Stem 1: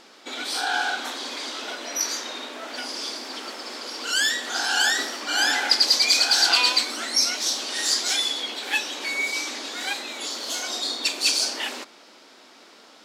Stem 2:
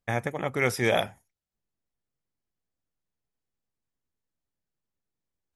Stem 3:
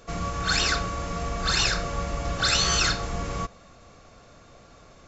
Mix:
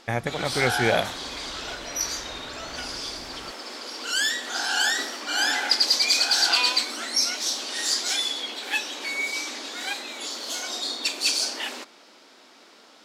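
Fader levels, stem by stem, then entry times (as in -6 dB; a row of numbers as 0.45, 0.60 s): -2.0, +1.5, -18.5 dB; 0.00, 0.00, 0.05 s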